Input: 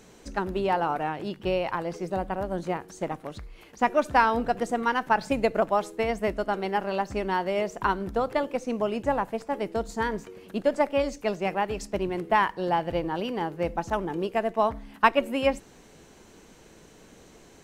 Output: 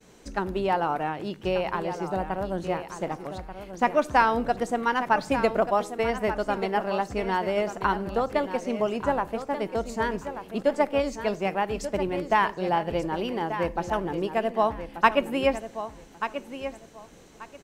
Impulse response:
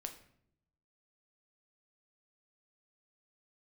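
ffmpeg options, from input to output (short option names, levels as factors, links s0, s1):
-filter_complex "[0:a]agate=range=0.0224:threshold=0.00316:ratio=3:detection=peak,aecho=1:1:1185|2370|3555:0.299|0.0627|0.0132,asplit=2[s0][s1];[1:a]atrim=start_sample=2205[s2];[s1][s2]afir=irnorm=-1:irlink=0,volume=0.266[s3];[s0][s3]amix=inputs=2:normalize=0,volume=0.891"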